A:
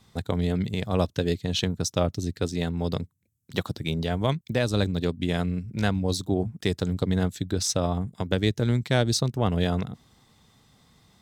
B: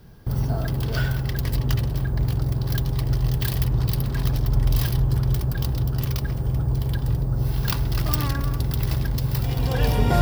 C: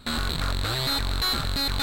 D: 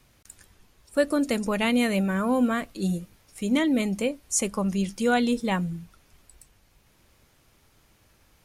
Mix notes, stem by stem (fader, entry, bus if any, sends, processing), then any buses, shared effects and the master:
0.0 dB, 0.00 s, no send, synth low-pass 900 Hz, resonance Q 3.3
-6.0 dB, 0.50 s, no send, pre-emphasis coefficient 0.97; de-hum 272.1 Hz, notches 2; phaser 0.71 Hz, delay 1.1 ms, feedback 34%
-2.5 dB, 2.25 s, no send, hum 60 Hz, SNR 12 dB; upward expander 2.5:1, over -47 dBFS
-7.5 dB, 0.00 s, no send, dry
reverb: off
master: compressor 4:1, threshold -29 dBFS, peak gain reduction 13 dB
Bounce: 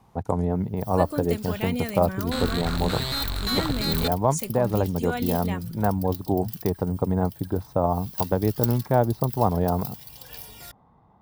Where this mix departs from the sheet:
stem C: missing upward expander 2.5:1, over -47 dBFS; master: missing compressor 4:1, threshold -29 dBFS, peak gain reduction 13 dB

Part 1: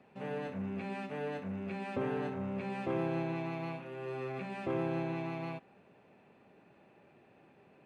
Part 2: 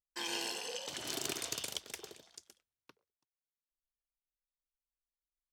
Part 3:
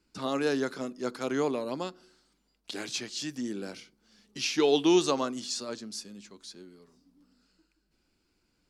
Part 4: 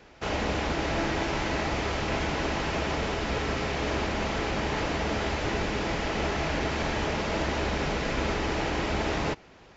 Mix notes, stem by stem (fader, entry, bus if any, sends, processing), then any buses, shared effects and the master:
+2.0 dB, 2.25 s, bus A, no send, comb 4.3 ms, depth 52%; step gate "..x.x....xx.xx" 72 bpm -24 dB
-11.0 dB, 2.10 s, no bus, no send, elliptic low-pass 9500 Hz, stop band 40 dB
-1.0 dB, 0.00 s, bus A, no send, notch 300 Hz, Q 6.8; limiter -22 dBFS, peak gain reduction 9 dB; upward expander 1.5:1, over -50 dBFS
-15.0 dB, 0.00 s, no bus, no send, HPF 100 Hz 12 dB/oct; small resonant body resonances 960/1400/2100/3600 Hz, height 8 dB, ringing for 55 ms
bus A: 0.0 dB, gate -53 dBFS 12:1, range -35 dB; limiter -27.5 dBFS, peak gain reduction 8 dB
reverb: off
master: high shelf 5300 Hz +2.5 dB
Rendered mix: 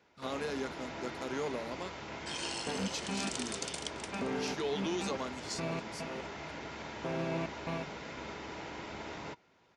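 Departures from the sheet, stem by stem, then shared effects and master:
stem 2 -11.0 dB -> -1.5 dB; stem 3: missing limiter -22 dBFS, peak gain reduction 9 dB

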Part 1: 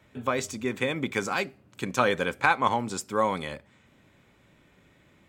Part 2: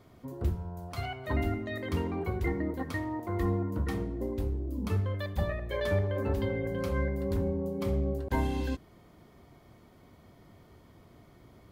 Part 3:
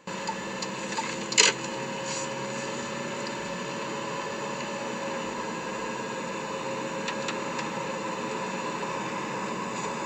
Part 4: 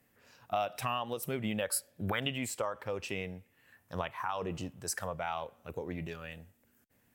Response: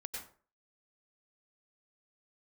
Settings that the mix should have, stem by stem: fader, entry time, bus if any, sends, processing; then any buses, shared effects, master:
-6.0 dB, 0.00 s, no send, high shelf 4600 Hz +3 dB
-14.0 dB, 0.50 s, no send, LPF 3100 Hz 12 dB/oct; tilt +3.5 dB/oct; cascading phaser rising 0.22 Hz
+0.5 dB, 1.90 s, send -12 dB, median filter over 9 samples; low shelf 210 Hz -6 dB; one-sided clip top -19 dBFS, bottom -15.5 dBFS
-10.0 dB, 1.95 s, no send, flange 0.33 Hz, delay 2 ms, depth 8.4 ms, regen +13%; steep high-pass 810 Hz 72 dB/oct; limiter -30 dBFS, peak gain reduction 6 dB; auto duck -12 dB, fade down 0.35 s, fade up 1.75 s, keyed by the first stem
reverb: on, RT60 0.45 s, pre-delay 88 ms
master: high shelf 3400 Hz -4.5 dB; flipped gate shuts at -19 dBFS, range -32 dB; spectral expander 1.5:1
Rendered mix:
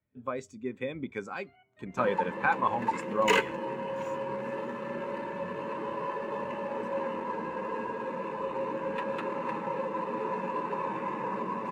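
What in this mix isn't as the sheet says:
stem 2: missing cascading phaser rising 0.22 Hz; master: missing flipped gate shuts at -19 dBFS, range -32 dB

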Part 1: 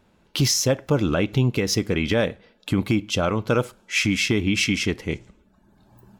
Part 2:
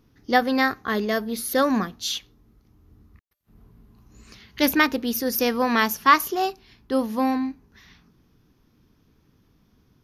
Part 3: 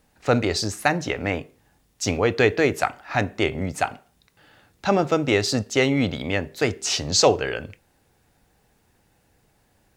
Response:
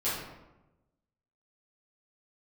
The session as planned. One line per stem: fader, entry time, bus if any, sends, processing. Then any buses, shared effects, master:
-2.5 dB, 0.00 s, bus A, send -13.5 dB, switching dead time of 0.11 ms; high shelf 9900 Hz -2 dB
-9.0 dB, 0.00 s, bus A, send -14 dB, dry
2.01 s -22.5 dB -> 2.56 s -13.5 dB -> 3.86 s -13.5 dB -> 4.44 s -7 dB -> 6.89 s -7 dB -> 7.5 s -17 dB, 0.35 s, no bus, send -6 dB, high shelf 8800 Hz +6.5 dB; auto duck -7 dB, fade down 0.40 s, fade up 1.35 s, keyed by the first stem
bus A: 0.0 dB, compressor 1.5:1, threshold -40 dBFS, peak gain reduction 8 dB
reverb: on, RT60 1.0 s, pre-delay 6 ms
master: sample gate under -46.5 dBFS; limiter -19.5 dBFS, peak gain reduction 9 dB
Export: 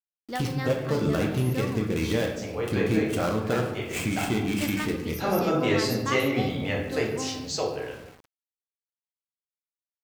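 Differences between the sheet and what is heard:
stem 2: send -14 dB -> -22.5 dB; stem 3: missing high shelf 8800 Hz +6.5 dB; master: missing limiter -19.5 dBFS, peak gain reduction 9 dB

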